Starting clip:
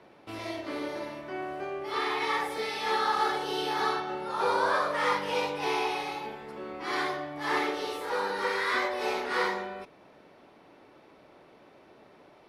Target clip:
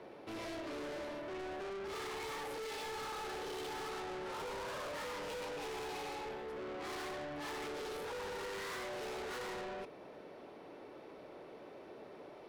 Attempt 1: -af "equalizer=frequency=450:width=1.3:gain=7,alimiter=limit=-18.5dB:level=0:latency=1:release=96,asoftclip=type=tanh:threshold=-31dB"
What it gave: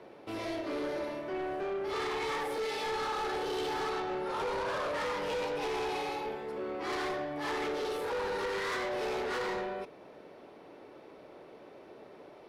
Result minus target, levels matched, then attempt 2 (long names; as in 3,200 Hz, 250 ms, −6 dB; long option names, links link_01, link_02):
soft clipping: distortion −5 dB
-af "equalizer=frequency=450:width=1.3:gain=7,alimiter=limit=-18.5dB:level=0:latency=1:release=96,asoftclip=type=tanh:threshold=-41.5dB"